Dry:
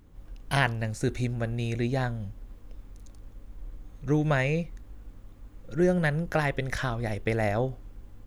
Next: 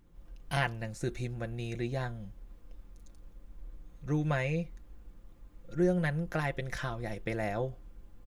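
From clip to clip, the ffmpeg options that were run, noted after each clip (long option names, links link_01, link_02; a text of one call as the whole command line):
ffmpeg -i in.wav -af "aecho=1:1:5.8:0.47,volume=-7dB" out.wav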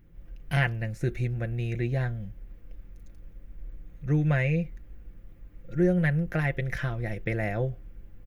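ffmpeg -i in.wav -af "equalizer=frequency=125:width_type=o:width=1:gain=4,equalizer=frequency=250:width_type=o:width=1:gain=-3,equalizer=frequency=1000:width_type=o:width=1:gain=-10,equalizer=frequency=2000:width_type=o:width=1:gain=5,equalizer=frequency=4000:width_type=o:width=1:gain=-7,equalizer=frequency=8000:width_type=o:width=1:gain=-11,volume=5.5dB" out.wav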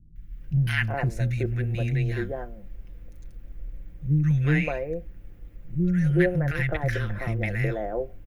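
ffmpeg -i in.wav -filter_complex "[0:a]acrossover=split=260|1200[link_01][link_02][link_03];[link_03]adelay=160[link_04];[link_02]adelay=370[link_05];[link_01][link_05][link_04]amix=inputs=3:normalize=0,volume=4dB" out.wav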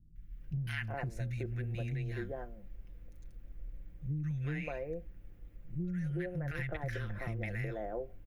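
ffmpeg -i in.wav -af "acompressor=threshold=-25dB:ratio=10,volume=-8dB" out.wav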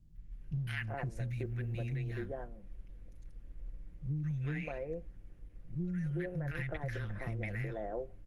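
ffmpeg -i in.wav -ar 48000 -c:a libopus -b:a 20k out.opus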